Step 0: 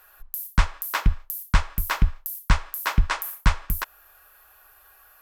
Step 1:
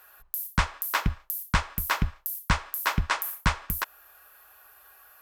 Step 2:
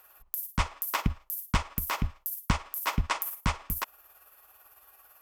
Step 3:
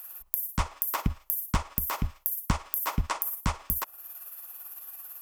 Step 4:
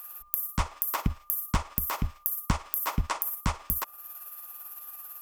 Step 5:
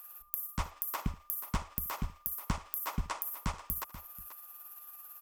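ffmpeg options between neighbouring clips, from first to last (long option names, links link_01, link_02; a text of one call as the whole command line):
ffmpeg -i in.wav -af "highpass=frequency=110:poles=1" out.wav
ffmpeg -i in.wav -af "equalizer=frequency=250:width_type=o:width=0.33:gain=5,equalizer=frequency=1600:width_type=o:width=0.33:gain=-9,equalizer=frequency=4000:width_type=o:width=0.33:gain=-4,tremolo=f=18:d=0.45,aeval=exprs='clip(val(0),-1,0.141)':channel_layout=same" out.wav
ffmpeg -i in.wav -filter_complex "[0:a]acrossover=split=1400[link_01][link_02];[link_02]acompressor=threshold=-44dB:ratio=4[link_03];[link_01][link_03]amix=inputs=2:normalize=0,crystalizer=i=3:c=0" out.wav
ffmpeg -i in.wav -af "aeval=exprs='val(0)+0.00178*sin(2*PI*1200*n/s)':channel_layout=same" out.wav
ffmpeg -i in.wav -af "aecho=1:1:76|485:0.106|0.2,volume=-7dB" out.wav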